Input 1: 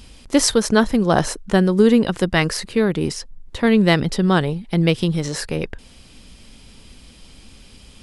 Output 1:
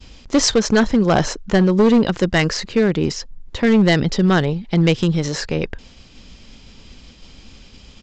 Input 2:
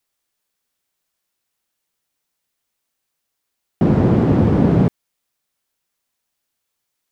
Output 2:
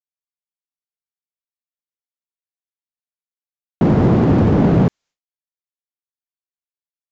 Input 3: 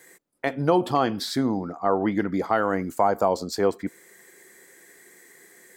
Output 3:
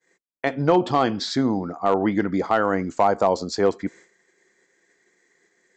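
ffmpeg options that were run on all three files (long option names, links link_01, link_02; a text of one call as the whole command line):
ffmpeg -i in.wav -af "agate=range=-33dB:threshold=-42dB:ratio=3:detection=peak,aresample=16000,asoftclip=type=hard:threshold=-11dB,aresample=44100,volume=2.5dB" out.wav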